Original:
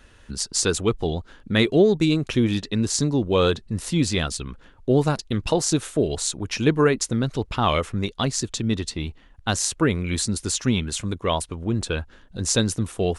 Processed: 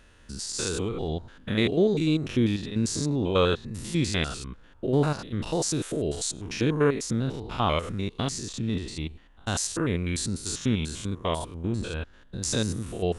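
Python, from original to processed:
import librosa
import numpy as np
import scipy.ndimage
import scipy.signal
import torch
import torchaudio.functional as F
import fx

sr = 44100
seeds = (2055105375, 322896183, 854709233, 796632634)

y = fx.spec_steps(x, sr, hold_ms=100)
y = fx.dynamic_eq(y, sr, hz=1700.0, q=0.76, threshold_db=-40.0, ratio=4.0, max_db=4, at=(3.21, 5.24))
y = y * librosa.db_to_amplitude(-2.5)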